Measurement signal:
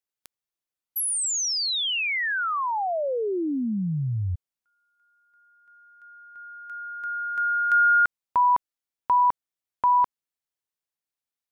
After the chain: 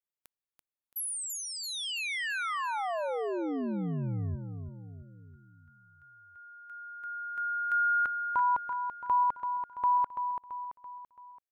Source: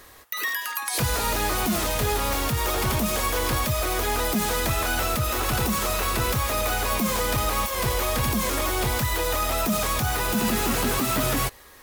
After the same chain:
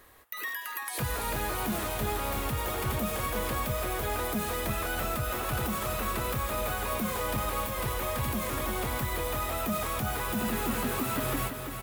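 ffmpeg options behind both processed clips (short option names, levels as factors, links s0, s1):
-filter_complex "[0:a]equalizer=f=5500:w=1.1:g=-7.5,asplit=2[s0][s1];[s1]aecho=0:1:335|670|1005|1340|1675|2010:0.422|0.211|0.105|0.0527|0.0264|0.0132[s2];[s0][s2]amix=inputs=2:normalize=0,volume=0.447"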